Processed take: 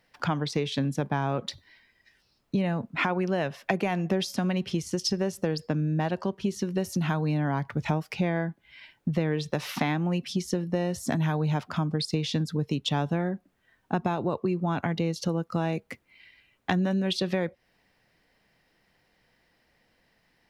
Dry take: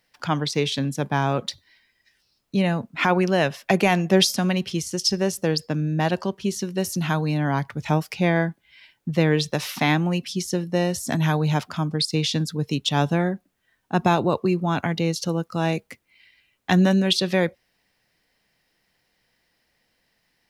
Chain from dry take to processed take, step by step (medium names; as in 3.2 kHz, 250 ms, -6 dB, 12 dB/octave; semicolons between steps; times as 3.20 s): treble shelf 3.2 kHz -10 dB; compression 5:1, threshold -29 dBFS, peak gain reduction 15 dB; trim +4.5 dB